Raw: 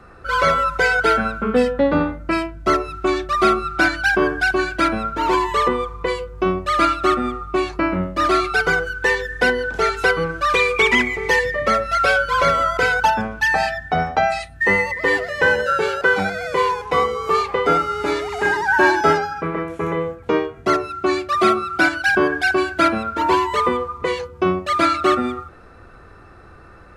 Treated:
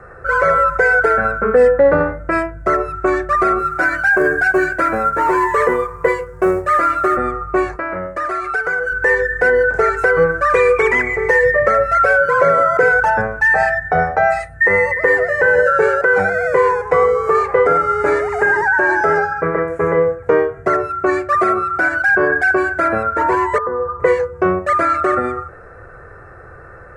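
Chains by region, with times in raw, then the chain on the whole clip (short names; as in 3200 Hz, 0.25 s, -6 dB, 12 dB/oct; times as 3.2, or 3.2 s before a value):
3.59–7.17 low shelf 130 Hz -6.5 dB + doubler 13 ms -4.5 dB + companded quantiser 6-bit
7.76–8.92 low shelf 390 Hz -10.5 dB + compressor 5:1, threshold -24 dBFS
12.2–12.92 HPF 140 Hz + bell 240 Hz +8.5 dB 2.3 oct
23.58–24 steep low-pass 1800 Hz 96 dB/oct + compressor 10:1, threshold -23 dBFS
whole clip: resonant high shelf 2400 Hz -11.5 dB, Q 3; limiter -9.5 dBFS; graphic EQ 125/250/500/1000/8000 Hz +6/-10/+10/-3/+10 dB; gain +2.5 dB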